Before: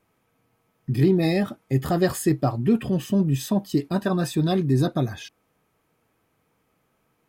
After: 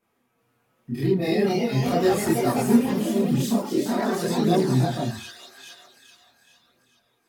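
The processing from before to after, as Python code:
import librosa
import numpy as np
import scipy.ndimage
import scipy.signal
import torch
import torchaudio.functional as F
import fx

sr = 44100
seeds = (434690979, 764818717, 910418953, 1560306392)

y = fx.low_shelf(x, sr, hz=92.0, db=-9.5)
y = fx.echo_wet_highpass(y, sr, ms=422, feedback_pct=50, hz=1900.0, wet_db=-4.5)
y = fx.echo_pitch(y, sr, ms=376, semitones=2, count=3, db_per_echo=-3.0)
y = fx.rev_fdn(y, sr, rt60_s=0.34, lf_ratio=1.05, hf_ratio=0.7, size_ms=25.0, drr_db=3.5)
y = fx.chorus_voices(y, sr, voices=2, hz=0.44, base_ms=27, depth_ms=3.5, mix_pct=60)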